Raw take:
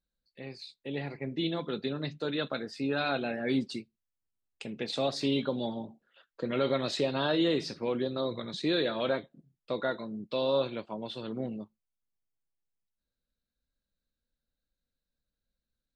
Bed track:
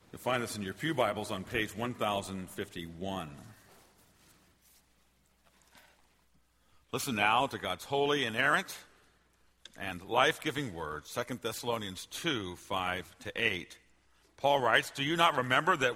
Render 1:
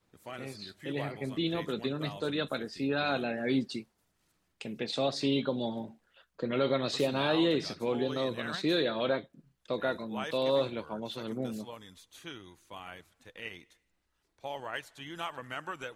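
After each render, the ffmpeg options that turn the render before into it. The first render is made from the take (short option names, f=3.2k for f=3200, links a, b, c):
-filter_complex "[1:a]volume=-12dB[a];[0:a][a]amix=inputs=2:normalize=0"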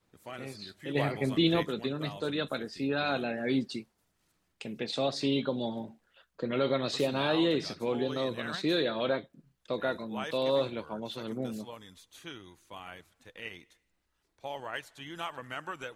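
-filter_complex "[0:a]asettb=1/sr,asplit=3[a][b][c];[a]atrim=end=0.954[d];[b]atrim=start=0.95:end=1.63,asetpts=PTS-STARTPTS,afade=t=in:d=0.004:c=qsin,afade=t=out:st=0.676:d=0.004:c=qsin,acontrast=56[e];[c]atrim=start=1.626[f];[d][e]acrossfade=d=0.004:c1=hsin:c2=qsin[g];[g][f]acrossfade=d=0.004:c1=qsin:c2=hsin"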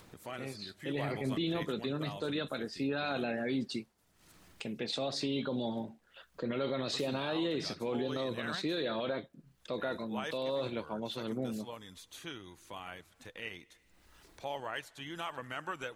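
-af "alimiter=level_in=1.5dB:limit=-24dB:level=0:latency=1:release=33,volume=-1.5dB,acompressor=mode=upward:threshold=-44dB:ratio=2.5"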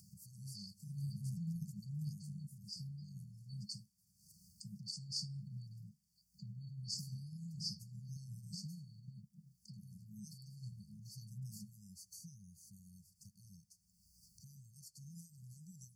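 -af "highpass=93,afftfilt=real='re*(1-between(b*sr/4096,210,4400))':imag='im*(1-between(b*sr/4096,210,4400))':win_size=4096:overlap=0.75"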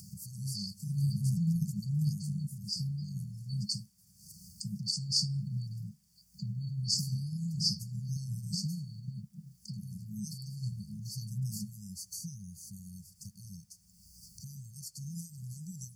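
-af "volume=12dB"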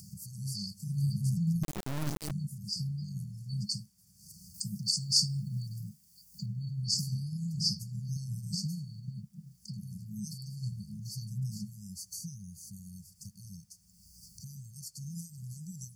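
-filter_complex "[0:a]asettb=1/sr,asplit=3[a][b][c];[a]atrim=end=1.634[d];[b]atrim=start=1.63:end=2.31,asetpts=PTS-STARTPTS,afade=t=in:d=0.004:c=qsin,afade=t=out:st=0.676:d=0.004:c=qsin,acrusher=bits=3:dc=4:mix=0:aa=0.000001[e];[c]atrim=start=2.306[f];[d][e]acrossfade=d=0.004:c1=hsin:c2=qsin[g];[g][f]acrossfade=d=0.004:c1=qsin:c2=hsin,asettb=1/sr,asplit=3[h][i][j];[h]atrim=end=4.544[k];[i]atrim=start=4.54:end=6.46,asetpts=PTS-STARTPTS,afade=t=in:d=0.004:c=qsin,afade=t=out:st=1.916:d=0.004:c=qsin,highshelf=f=7.1k:g=11.5[l];[j]atrim=start=6.456[m];[k][l]acrossfade=d=0.004:c1=hsin:c2=qsin[n];[n][m]acrossfade=d=0.004:c1=qsin:c2=hsin,asettb=1/sr,asplit=3[o][p][q];[o]atrim=end=11.184[r];[p]atrim=start=11.18:end=11.84,asetpts=PTS-STARTPTS,afade=t=in:d=0.004:c=qsin,afade=t=out:st=0.656:d=0.004:c=qsin,acrossover=split=5800[s][t];[t]acompressor=threshold=-53dB:ratio=4:attack=1:release=60[u];[s][u]amix=inputs=2:normalize=0[v];[q]atrim=start=11.836[w];[r][v]acrossfade=d=0.004:c1=hsin:c2=qsin[x];[x][w]acrossfade=d=0.004:c1=qsin:c2=hsin"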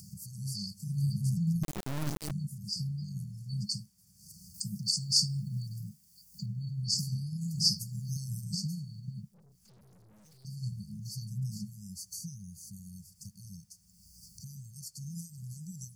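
-filter_complex "[0:a]asettb=1/sr,asplit=3[a][b][c];[a]atrim=end=7.414[d];[b]atrim=start=7.41:end=8.44,asetpts=PTS-STARTPTS,afade=t=in:d=0.004:c=qsin,afade=t=out:st=1.026:d=0.004:c=qsin,highshelf=f=6.1k:g=10[e];[c]atrim=start=8.436[f];[d][e]acrossfade=d=0.004:c1=hsin:c2=qsin[g];[g][f]acrossfade=d=0.004:c1=qsin:c2=hsin,asettb=1/sr,asplit=3[h][i][j];[h]atrim=end=9.304[k];[i]atrim=start=9.3:end=10.45,asetpts=PTS-STARTPTS,afade=t=in:d=0.004:c=qsin,afade=t=out:st=1.146:d=0.004:c=qsin,aeval=exprs='(tanh(891*val(0)+0.4)-tanh(0.4))/891':c=same[l];[j]atrim=start=10.446[m];[k][l]acrossfade=d=0.004:c1=hsin:c2=qsin[n];[n][m]acrossfade=d=0.004:c1=qsin:c2=hsin"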